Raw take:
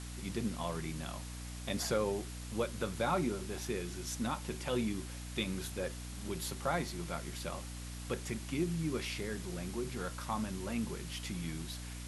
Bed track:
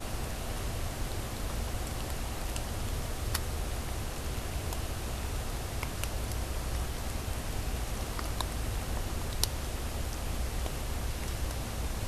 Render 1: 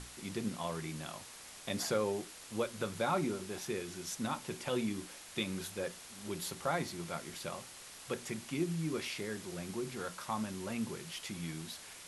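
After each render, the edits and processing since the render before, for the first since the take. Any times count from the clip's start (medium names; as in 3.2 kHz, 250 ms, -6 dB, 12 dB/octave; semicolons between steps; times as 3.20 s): hum notches 60/120/180/240/300 Hz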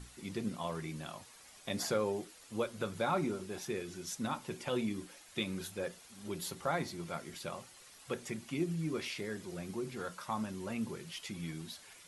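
noise reduction 9 dB, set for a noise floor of -52 dBFS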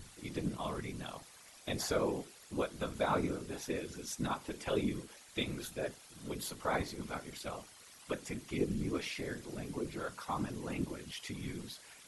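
whisper effect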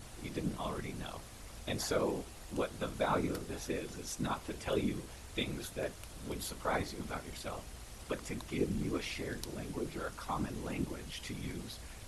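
add bed track -15.5 dB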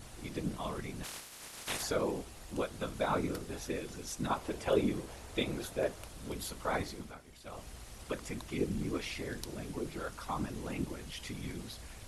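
1.03–1.81 s: spectral peaks clipped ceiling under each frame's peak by 28 dB; 4.30–6.09 s: peaking EQ 580 Hz +6 dB 2.2 oct; 6.91–7.66 s: dip -10.5 dB, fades 0.25 s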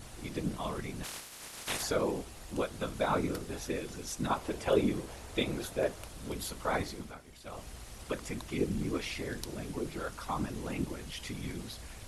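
trim +2 dB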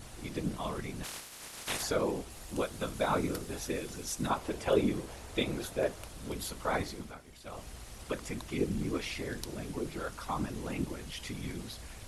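2.30–4.30 s: treble shelf 6.3 kHz +5 dB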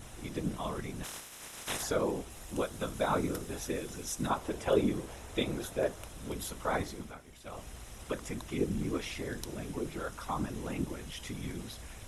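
band-stop 4.5 kHz, Q 5.8; dynamic bell 2.4 kHz, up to -3 dB, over -51 dBFS, Q 2.4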